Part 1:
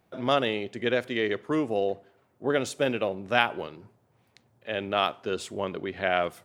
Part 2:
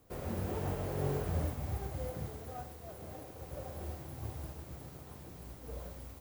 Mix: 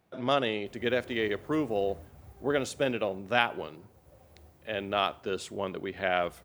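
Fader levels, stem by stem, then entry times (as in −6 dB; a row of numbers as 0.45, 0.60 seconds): −2.5, −14.0 decibels; 0.00, 0.55 seconds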